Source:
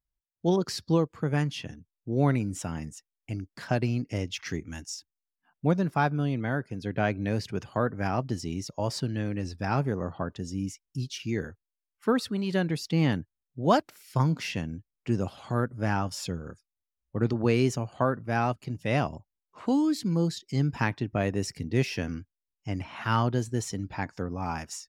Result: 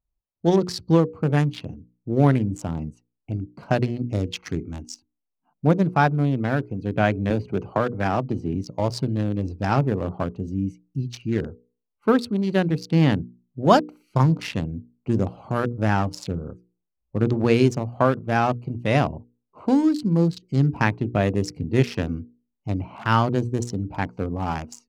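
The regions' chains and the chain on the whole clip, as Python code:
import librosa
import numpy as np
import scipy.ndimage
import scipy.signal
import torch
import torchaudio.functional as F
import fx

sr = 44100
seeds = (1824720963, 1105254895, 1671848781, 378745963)

y = fx.chain(x, sr, fx.bass_treble(bass_db=-3, treble_db=-4),
    fx.band_squash(depth_pct=70), at=(7.3, 8.55))
y = fx.wiener(y, sr, points=25)
y = fx.hum_notches(y, sr, base_hz=60, count=8)
y = F.gain(torch.from_numpy(y), 7.0).numpy()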